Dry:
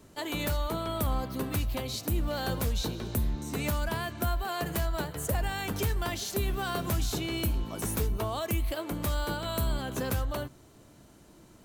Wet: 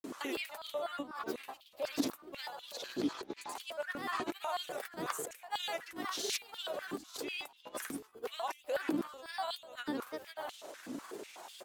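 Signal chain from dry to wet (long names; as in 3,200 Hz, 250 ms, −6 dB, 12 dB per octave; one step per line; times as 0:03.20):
compressor whose output falls as the input rises −41 dBFS, ratio −1
granular cloud, pitch spread up and down by 3 semitones
high-pass on a step sequencer 8.1 Hz 280–3,300 Hz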